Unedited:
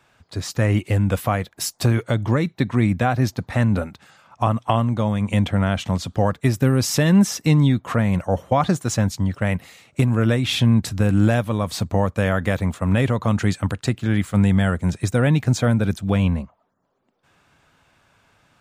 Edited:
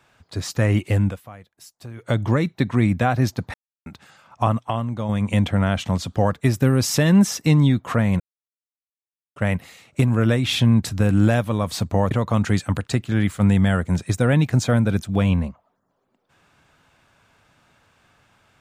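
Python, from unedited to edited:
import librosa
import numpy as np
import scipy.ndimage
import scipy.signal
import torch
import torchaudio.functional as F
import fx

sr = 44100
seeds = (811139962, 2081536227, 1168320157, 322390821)

y = fx.edit(x, sr, fx.fade_down_up(start_s=1.08, length_s=1.0, db=-19.5, fade_s=0.38, curve='exp'),
    fx.silence(start_s=3.54, length_s=0.32),
    fx.clip_gain(start_s=4.6, length_s=0.49, db=-5.5),
    fx.silence(start_s=8.2, length_s=1.16),
    fx.cut(start_s=12.11, length_s=0.94), tone=tone)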